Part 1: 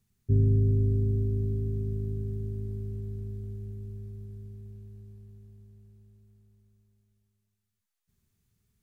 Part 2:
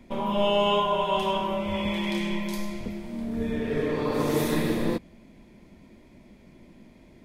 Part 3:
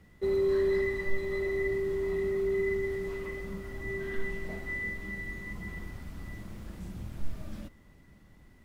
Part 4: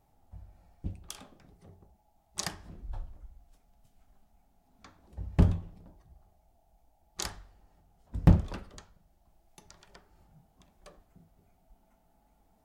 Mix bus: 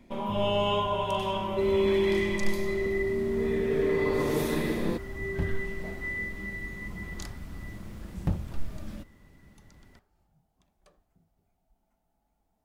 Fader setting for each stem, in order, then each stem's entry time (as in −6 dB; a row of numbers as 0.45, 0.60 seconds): −15.5, −4.0, +1.5, −8.5 decibels; 0.00, 0.00, 1.35, 0.00 seconds